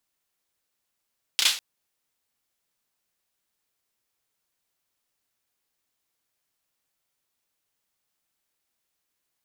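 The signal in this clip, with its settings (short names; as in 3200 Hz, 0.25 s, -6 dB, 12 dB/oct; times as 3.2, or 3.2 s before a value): hand clap length 0.20 s, bursts 3, apart 31 ms, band 3500 Hz, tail 0.37 s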